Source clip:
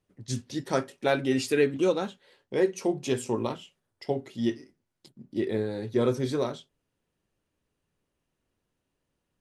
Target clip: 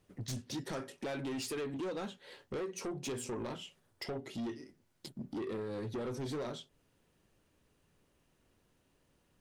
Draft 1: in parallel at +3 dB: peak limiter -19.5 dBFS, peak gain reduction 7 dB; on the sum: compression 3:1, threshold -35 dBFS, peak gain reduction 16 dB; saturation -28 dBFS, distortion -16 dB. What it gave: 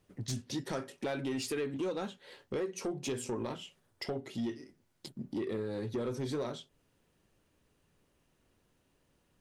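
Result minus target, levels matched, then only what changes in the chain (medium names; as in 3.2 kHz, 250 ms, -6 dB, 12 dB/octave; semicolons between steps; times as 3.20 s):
saturation: distortion -7 dB
change: saturation -34.5 dBFS, distortion -9 dB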